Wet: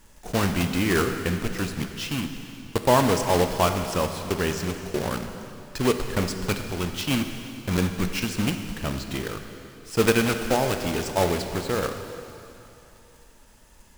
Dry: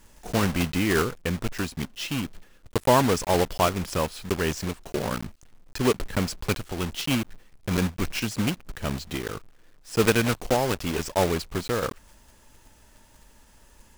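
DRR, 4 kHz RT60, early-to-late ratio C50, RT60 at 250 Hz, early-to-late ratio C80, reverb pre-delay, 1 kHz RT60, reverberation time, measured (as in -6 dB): 6.0 dB, 2.9 s, 7.0 dB, 2.7 s, 7.5 dB, 9 ms, 2.9 s, 2.9 s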